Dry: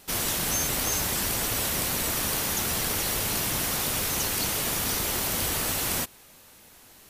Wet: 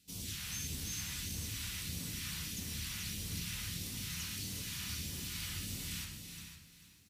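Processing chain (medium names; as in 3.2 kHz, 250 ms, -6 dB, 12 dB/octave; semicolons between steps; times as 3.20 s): rattle on loud lows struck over -34 dBFS, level -27 dBFS; high-pass 64 Hz; treble shelf 6.1 kHz -9.5 dB; reverberation, pre-delay 4 ms, DRR -0.5 dB; phase shifter stages 2, 1.6 Hz, lowest notch 330–1700 Hz; amplifier tone stack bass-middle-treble 6-0-2; multi-tap echo 365/371/505 ms -17/-10/-11 dB; bit-crushed delay 442 ms, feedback 35%, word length 12-bit, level -13 dB; trim +3.5 dB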